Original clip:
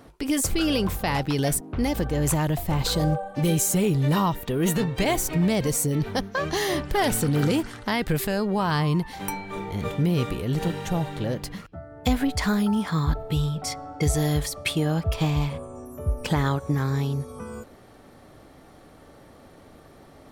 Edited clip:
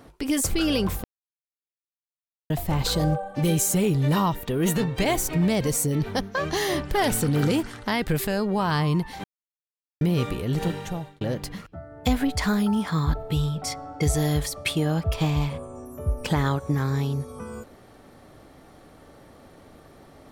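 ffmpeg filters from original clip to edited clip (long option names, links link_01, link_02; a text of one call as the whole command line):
ffmpeg -i in.wav -filter_complex "[0:a]asplit=6[link_01][link_02][link_03][link_04][link_05][link_06];[link_01]atrim=end=1.04,asetpts=PTS-STARTPTS,afade=type=out:start_time=1.036:duration=0.004:curve=hsin[link_07];[link_02]atrim=start=1.04:end=2.5,asetpts=PTS-STARTPTS,volume=0[link_08];[link_03]atrim=start=2.5:end=9.24,asetpts=PTS-STARTPTS,afade=type=in:duration=0.004:curve=hsin,afade=type=out:start_time=6.736:duration=0.004:curve=hsin[link_09];[link_04]atrim=start=9.24:end=10.01,asetpts=PTS-STARTPTS,volume=0[link_10];[link_05]atrim=start=10.01:end=11.21,asetpts=PTS-STARTPTS,afade=type=in:duration=0.004:curve=hsin,afade=type=out:start_time=0.7:duration=0.5[link_11];[link_06]atrim=start=11.21,asetpts=PTS-STARTPTS,afade=type=in:duration=0.004:curve=hsin[link_12];[link_07][link_08][link_09][link_10][link_11][link_12]concat=n=6:v=0:a=1" out.wav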